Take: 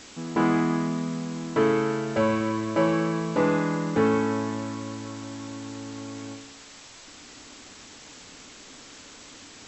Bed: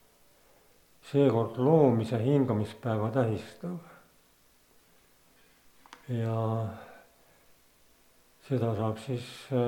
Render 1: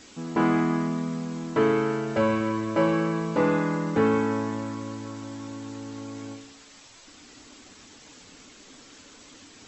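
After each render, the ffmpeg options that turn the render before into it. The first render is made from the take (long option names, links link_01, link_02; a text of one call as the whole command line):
ffmpeg -i in.wav -af "afftdn=noise_reduction=6:noise_floor=-47" out.wav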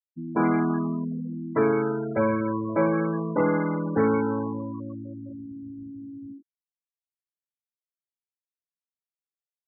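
ffmpeg -i in.wav -af "afftfilt=real='re*gte(hypot(re,im),0.0562)':imag='im*gte(hypot(re,im),0.0562)':win_size=1024:overlap=0.75" out.wav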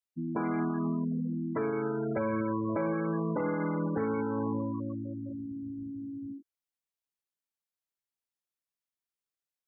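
ffmpeg -i in.wav -af "alimiter=limit=-22.5dB:level=0:latency=1:release=241" out.wav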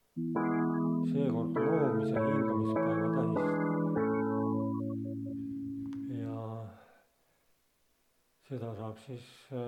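ffmpeg -i in.wav -i bed.wav -filter_complex "[1:a]volume=-10.5dB[link_01];[0:a][link_01]amix=inputs=2:normalize=0" out.wav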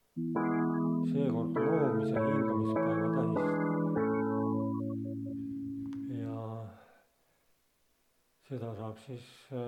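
ffmpeg -i in.wav -af anull out.wav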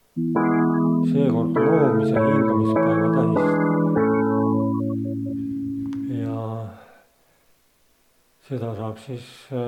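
ffmpeg -i in.wav -af "volume=11.5dB" out.wav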